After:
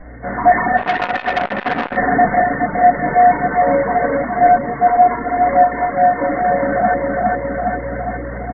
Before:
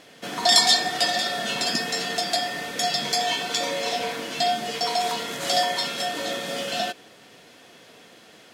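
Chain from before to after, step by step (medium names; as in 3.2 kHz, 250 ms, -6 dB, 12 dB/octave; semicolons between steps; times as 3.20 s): hum 60 Hz, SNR 22 dB; brick-wall FIR low-pass 2.2 kHz; 4.98–5.45 s: comb 2.9 ms, depth 65%; feedback delay 411 ms, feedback 54%, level -4.5 dB; simulated room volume 250 m³, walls furnished, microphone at 6.5 m; level rider gain up to 8.5 dB; reverb removal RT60 0.62 s; 0.77–1.97 s: transformer saturation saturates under 1.6 kHz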